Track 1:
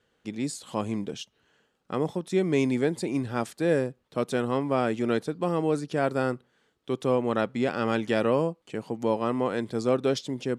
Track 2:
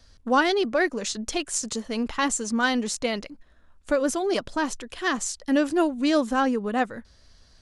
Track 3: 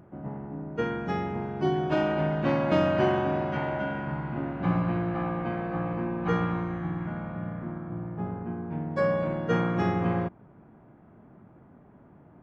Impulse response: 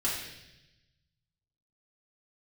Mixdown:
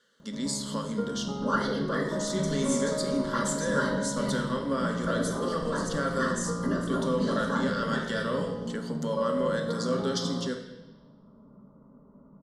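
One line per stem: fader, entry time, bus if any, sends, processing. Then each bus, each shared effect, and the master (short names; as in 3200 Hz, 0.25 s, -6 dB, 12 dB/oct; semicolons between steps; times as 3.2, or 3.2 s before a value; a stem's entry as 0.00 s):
+0.5 dB, 0.00 s, bus A, send -12.5 dB, weighting filter D
-5.0 dB, 1.15 s, bus A, send -8.5 dB, whisperiser
+0.5 dB, 0.20 s, no bus, send -13 dB, compressor, threshold -27 dBFS, peak gain reduction 8.5 dB; polynomial smoothing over 65 samples
bus A: 0.0 dB, compressor, threshold -29 dBFS, peak gain reduction 12 dB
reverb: on, RT60 0.90 s, pre-delay 3 ms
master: fixed phaser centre 500 Hz, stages 8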